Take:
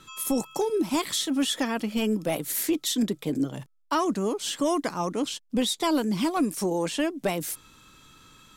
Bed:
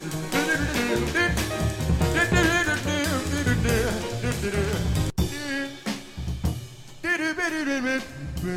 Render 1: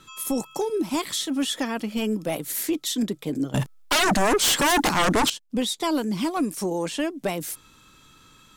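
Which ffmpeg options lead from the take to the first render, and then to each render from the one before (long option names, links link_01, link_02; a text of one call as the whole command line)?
ffmpeg -i in.wav -filter_complex "[0:a]asettb=1/sr,asplit=3[link_01][link_02][link_03];[link_01]atrim=end=3.544[link_04];[link_02]atrim=start=3.54:end=5.3,asetpts=PTS-STARTPTS,afade=type=in:duration=0.004:curve=qsin,afade=type=out:start_time=1.756:duration=0.004:curve=qsin,aeval=exprs='0.15*sin(PI/2*3.98*val(0)/0.15)':channel_layout=same[link_05];[link_03]atrim=start=5.296[link_06];[link_04][link_05]acrossfade=duration=0.004:curve1=hsin:curve2=qsin[link_07];[link_07][link_06]acrossfade=duration=0.004:curve1=qsin:curve2=hsin" out.wav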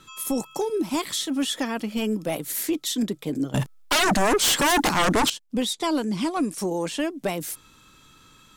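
ffmpeg -i in.wav -filter_complex "[0:a]asettb=1/sr,asplit=3[link_01][link_02][link_03];[link_01]atrim=end=5.734[link_04];[link_02]atrim=start=5.73:end=6.58,asetpts=PTS-STARTPTS,afade=type=in:duration=0.004:curve=qsin,afade=type=out:start_time=0.846:duration=0.004:curve=qsin,lowpass=frequency=11000:width=0.5412,lowpass=frequency=11000:width=1.3066[link_05];[link_03]atrim=start=6.576[link_06];[link_04][link_05]acrossfade=duration=0.004:curve1=hsin:curve2=qsin[link_07];[link_07][link_06]acrossfade=duration=0.004:curve1=qsin:curve2=hsin" out.wav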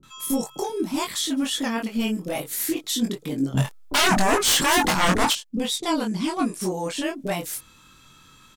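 ffmpeg -i in.wav -filter_complex "[0:a]asplit=2[link_01][link_02];[link_02]adelay=22,volume=-4dB[link_03];[link_01][link_03]amix=inputs=2:normalize=0,acrossover=split=440[link_04][link_05];[link_05]adelay=30[link_06];[link_04][link_06]amix=inputs=2:normalize=0" out.wav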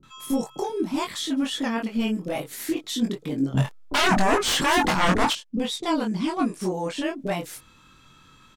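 ffmpeg -i in.wav -af "lowpass=frequency=3400:poles=1" out.wav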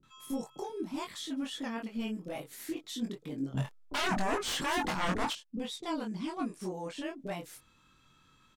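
ffmpeg -i in.wav -af "volume=-11dB" out.wav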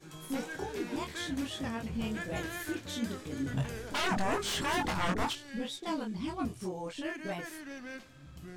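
ffmpeg -i in.wav -i bed.wav -filter_complex "[1:a]volume=-18.5dB[link_01];[0:a][link_01]amix=inputs=2:normalize=0" out.wav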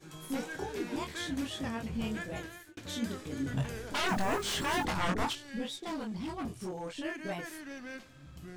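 ffmpeg -i in.wav -filter_complex "[0:a]asettb=1/sr,asplit=3[link_01][link_02][link_03];[link_01]atrim=end=4.084[link_04];[link_02]atrim=start=4.08:end=4.85,asetpts=PTS-STARTPTS,afade=type=in:duration=0.004:curve=qsin,afade=type=out:start_time=0.766:duration=0.004:curve=qsin,acrusher=bits=9:dc=4:mix=0:aa=0.000001[link_05];[link_03]atrim=start=4.846[link_06];[link_04][link_05]acrossfade=duration=0.004:curve1=hsin:curve2=qsin[link_07];[link_07][link_06]acrossfade=duration=0.004:curve1=qsin:curve2=hsin,asettb=1/sr,asplit=3[link_08][link_09][link_10];[link_08]atrim=end=5.684[link_11];[link_09]atrim=start=5.68:end=6.96,asetpts=PTS-STARTPTS,afade=type=in:duration=0.004:curve=qsin,afade=type=out:start_time=1.276:duration=0.004:curve=qsin,volume=34dB,asoftclip=hard,volume=-34dB[link_12];[link_10]atrim=start=6.956[link_13];[link_11][link_12]acrossfade=duration=0.004:curve1=hsin:curve2=qsin[link_14];[link_14][link_13]acrossfade=duration=0.004:curve1=qsin:curve2=hsin,asplit=2[link_15][link_16];[link_15]atrim=end=2.77,asetpts=PTS-STARTPTS,afade=type=out:start_time=2.15:duration=0.62[link_17];[link_16]atrim=start=2.77,asetpts=PTS-STARTPTS,afade=type=in:duration=0.004:curve=hsin[link_18];[link_17][link_18]concat=n=2:v=0:a=1" out.wav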